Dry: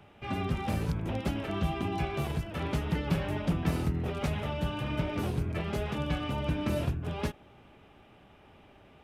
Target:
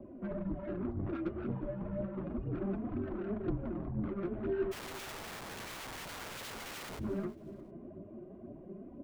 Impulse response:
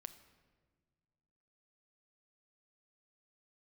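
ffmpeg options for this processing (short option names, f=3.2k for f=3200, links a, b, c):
-filter_complex "[0:a]highpass=170,equalizer=f=220:w=0.45:g=-2,aecho=1:1:2.3:0.79,acompressor=threshold=-39dB:ratio=10,lowpass=f=570:t=q:w=4.8,asoftclip=type=tanh:threshold=-36dB,flanger=delay=4:depth=7.8:regen=27:speed=0.33:shape=sinusoidal,afreqshift=-200,flanger=delay=0.2:depth=5.6:regen=28:speed=2:shape=sinusoidal,asplit=3[a][b][c];[a]afade=t=out:st=4.71:d=0.02[d];[b]aeval=exprs='(mod(355*val(0)+1,2)-1)/355':c=same,afade=t=in:st=4.71:d=0.02,afade=t=out:st=6.98:d=0.02[e];[c]afade=t=in:st=6.98:d=0.02[f];[d][e][f]amix=inputs=3:normalize=0,aecho=1:1:358|716:0.1|0.031,volume=11dB"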